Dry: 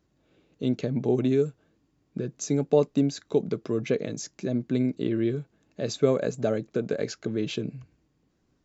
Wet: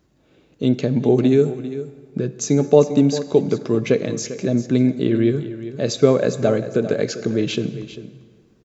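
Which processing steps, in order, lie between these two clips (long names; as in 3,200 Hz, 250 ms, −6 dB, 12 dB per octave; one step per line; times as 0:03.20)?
on a send: single-tap delay 397 ms −13.5 dB
on the sum: dense smooth reverb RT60 2 s, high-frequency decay 0.7×, DRR 13 dB
level +8 dB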